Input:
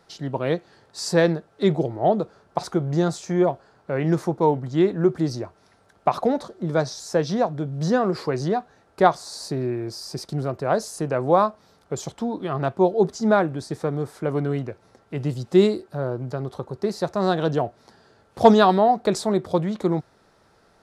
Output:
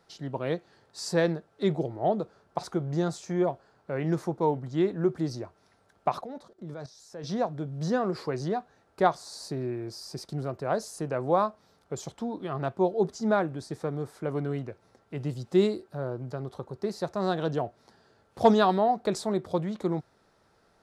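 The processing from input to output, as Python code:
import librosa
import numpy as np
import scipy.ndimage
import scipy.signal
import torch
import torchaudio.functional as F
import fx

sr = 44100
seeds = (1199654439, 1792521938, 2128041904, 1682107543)

y = fx.level_steps(x, sr, step_db=16, at=(6.21, 7.24))
y = F.gain(torch.from_numpy(y), -6.5).numpy()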